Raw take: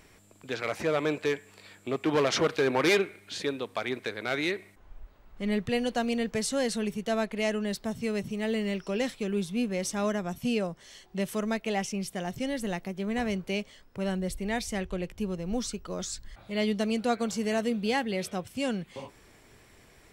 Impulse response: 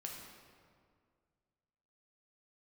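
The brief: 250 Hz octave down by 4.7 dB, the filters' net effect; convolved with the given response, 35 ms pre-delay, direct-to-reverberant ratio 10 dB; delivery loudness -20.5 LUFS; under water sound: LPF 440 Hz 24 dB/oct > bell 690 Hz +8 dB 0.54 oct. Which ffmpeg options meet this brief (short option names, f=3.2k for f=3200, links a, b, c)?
-filter_complex "[0:a]equalizer=f=250:t=o:g=-6,asplit=2[a][b];[1:a]atrim=start_sample=2205,adelay=35[c];[b][c]afir=irnorm=-1:irlink=0,volume=-8dB[d];[a][d]amix=inputs=2:normalize=0,lowpass=f=440:w=0.5412,lowpass=f=440:w=1.3066,equalizer=f=690:t=o:w=0.54:g=8,volume=15.5dB"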